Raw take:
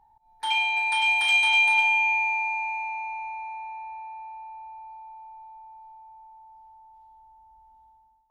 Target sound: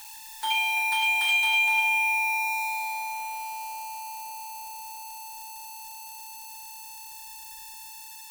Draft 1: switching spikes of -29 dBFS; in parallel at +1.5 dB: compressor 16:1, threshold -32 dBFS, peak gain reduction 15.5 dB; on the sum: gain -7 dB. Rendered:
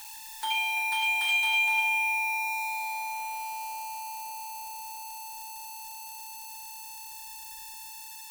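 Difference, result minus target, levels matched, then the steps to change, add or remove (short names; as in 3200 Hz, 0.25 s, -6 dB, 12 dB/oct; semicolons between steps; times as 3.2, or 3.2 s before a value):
compressor: peak gain reduction +9 dB
change: compressor 16:1, threshold -22.5 dBFS, peak gain reduction 6.5 dB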